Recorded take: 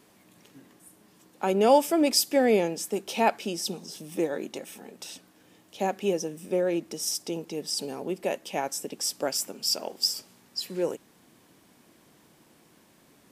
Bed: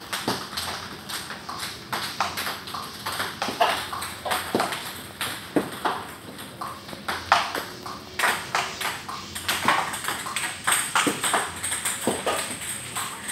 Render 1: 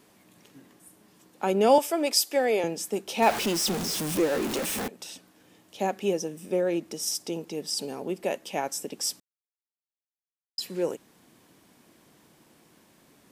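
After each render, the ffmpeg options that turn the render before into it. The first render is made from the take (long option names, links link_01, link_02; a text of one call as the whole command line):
ffmpeg -i in.wav -filter_complex "[0:a]asettb=1/sr,asplit=3[link_01][link_02][link_03];[link_01]atrim=end=1.784[link_04];[link_02]atrim=start=1.78:end=2.64,asetpts=PTS-STARTPTS,afade=type=in:duration=0.004:curve=qsin,afade=type=out:start_time=0.856:duration=0.004:curve=qsin,highpass=420[link_05];[link_03]atrim=start=2.636[link_06];[link_04][link_05]acrossfade=duration=0.004:curve1=hsin:curve2=qsin[link_07];[link_07][link_06]acrossfade=duration=0.004:curve1=qsin:curve2=hsin,asettb=1/sr,asplit=3[link_08][link_09][link_10];[link_08]atrim=end=3.224[link_11];[link_09]atrim=start=3.22:end=4.88,asetpts=PTS-STARTPTS,afade=type=in:duration=0.004:curve=qsin,afade=type=out:start_time=1.656:duration=0.004:curve=qsin,aeval=exprs='val(0)+0.5*0.0501*sgn(val(0))':channel_layout=same[link_12];[link_10]atrim=start=4.876[link_13];[link_11][link_12]acrossfade=duration=0.004:curve1=hsin:curve2=qsin[link_14];[link_14][link_13]acrossfade=duration=0.004:curve1=qsin:curve2=hsin,asplit=3[link_15][link_16][link_17];[link_15]atrim=end=9.2,asetpts=PTS-STARTPTS,afade=type=out:start_time=9.196:duration=0.004:curve=hsin[link_18];[link_16]atrim=start=9.2:end=10.58,asetpts=PTS-STARTPTS,volume=0[link_19];[link_17]atrim=start=10.58,asetpts=PTS-STARTPTS,afade=type=in:duration=0.004:curve=hsin[link_20];[link_18][link_19][link_20]concat=n=3:v=0:a=1" out.wav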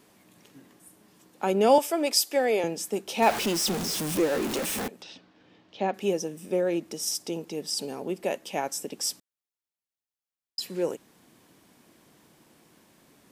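ffmpeg -i in.wav -filter_complex "[0:a]asettb=1/sr,asplit=3[link_01][link_02][link_03];[link_01]atrim=end=5.024[link_04];[link_02]atrim=start=5.02:end=5.94,asetpts=PTS-STARTPTS,afade=type=in:duration=0.004:curve=qsin,afade=type=out:start_time=0.916:duration=0.004:curve=qsin,lowpass=frequency=4600:width=0.5412,lowpass=frequency=4600:width=1.3066[link_05];[link_03]atrim=start=5.936[link_06];[link_04][link_05]acrossfade=duration=0.004:curve1=hsin:curve2=qsin[link_07];[link_07][link_06]acrossfade=duration=0.004:curve1=qsin:curve2=hsin" out.wav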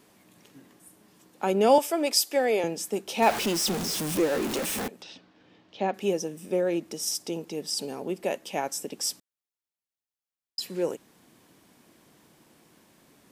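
ffmpeg -i in.wav -af anull out.wav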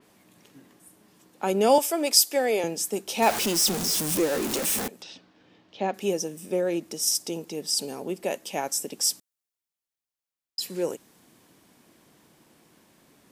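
ffmpeg -i in.wav -af "adynamicequalizer=threshold=0.00631:dfrequency=4500:dqfactor=0.7:tfrequency=4500:tqfactor=0.7:attack=5:release=100:ratio=0.375:range=3.5:mode=boostabove:tftype=highshelf" out.wav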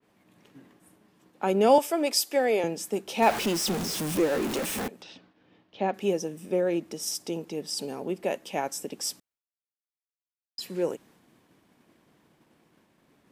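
ffmpeg -i in.wav -af "agate=range=-33dB:threshold=-54dB:ratio=3:detection=peak,bass=frequency=250:gain=1,treble=frequency=4000:gain=-9" out.wav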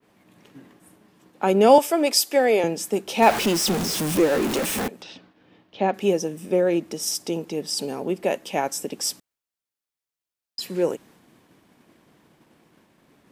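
ffmpeg -i in.wav -af "volume=5.5dB" out.wav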